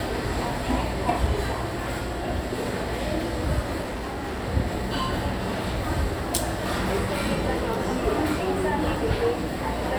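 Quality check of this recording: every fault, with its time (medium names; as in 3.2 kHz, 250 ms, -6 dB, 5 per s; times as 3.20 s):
3.81–4.44 s: clipped -27.5 dBFS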